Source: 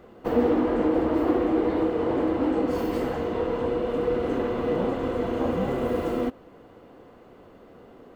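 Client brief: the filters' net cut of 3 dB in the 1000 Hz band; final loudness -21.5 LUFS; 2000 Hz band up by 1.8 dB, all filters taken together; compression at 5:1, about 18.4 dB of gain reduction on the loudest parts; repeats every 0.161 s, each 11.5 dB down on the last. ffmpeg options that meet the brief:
-af "equalizer=f=1k:t=o:g=-5,equalizer=f=2k:t=o:g=4,acompressor=threshold=-40dB:ratio=5,aecho=1:1:161|322|483:0.266|0.0718|0.0194,volume=20.5dB"

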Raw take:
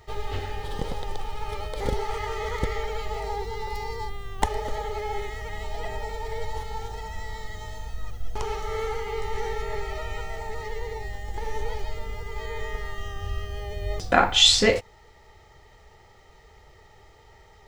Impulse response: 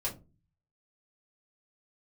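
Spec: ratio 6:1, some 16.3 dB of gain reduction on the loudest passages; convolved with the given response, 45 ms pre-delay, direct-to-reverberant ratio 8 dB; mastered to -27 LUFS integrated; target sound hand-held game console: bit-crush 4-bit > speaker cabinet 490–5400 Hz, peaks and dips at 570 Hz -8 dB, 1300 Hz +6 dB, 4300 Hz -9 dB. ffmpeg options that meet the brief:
-filter_complex "[0:a]acompressor=threshold=-31dB:ratio=6,asplit=2[a][b];[1:a]atrim=start_sample=2205,adelay=45[c];[b][c]afir=irnorm=-1:irlink=0,volume=-11dB[d];[a][d]amix=inputs=2:normalize=0,acrusher=bits=3:mix=0:aa=0.000001,highpass=490,equalizer=f=570:t=q:w=4:g=-8,equalizer=f=1.3k:t=q:w=4:g=6,equalizer=f=4.3k:t=q:w=4:g=-9,lowpass=f=5.4k:w=0.5412,lowpass=f=5.4k:w=1.3066,volume=12.5dB"

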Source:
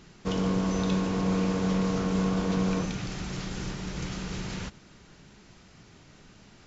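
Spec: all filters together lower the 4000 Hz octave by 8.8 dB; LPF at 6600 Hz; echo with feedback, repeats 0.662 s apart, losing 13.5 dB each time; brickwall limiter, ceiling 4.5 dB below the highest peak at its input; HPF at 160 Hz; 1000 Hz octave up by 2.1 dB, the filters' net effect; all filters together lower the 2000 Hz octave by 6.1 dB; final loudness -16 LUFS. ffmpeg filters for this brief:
-af "highpass=160,lowpass=6.6k,equalizer=f=1k:t=o:g=5,equalizer=f=2k:t=o:g=-8.5,equalizer=f=4k:t=o:g=-8.5,alimiter=limit=-22dB:level=0:latency=1,aecho=1:1:662|1324:0.211|0.0444,volume=16dB"

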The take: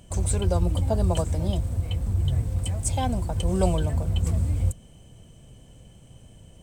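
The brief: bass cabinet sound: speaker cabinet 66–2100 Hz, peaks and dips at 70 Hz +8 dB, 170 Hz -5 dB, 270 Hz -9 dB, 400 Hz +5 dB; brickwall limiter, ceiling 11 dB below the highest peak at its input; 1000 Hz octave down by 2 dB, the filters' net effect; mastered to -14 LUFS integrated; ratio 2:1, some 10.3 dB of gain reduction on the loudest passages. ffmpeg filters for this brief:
-af "equalizer=f=1k:t=o:g=-3,acompressor=threshold=-37dB:ratio=2,alimiter=level_in=7dB:limit=-24dB:level=0:latency=1,volume=-7dB,highpass=f=66:w=0.5412,highpass=f=66:w=1.3066,equalizer=f=70:t=q:w=4:g=8,equalizer=f=170:t=q:w=4:g=-5,equalizer=f=270:t=q:w=4:g=-9,equalizer=f=400:t=q:w=4:g=5,lowpass=f=2.1k:w=0.5412,lowpass=f=2.1k:w=1.3066,volume=25dB"

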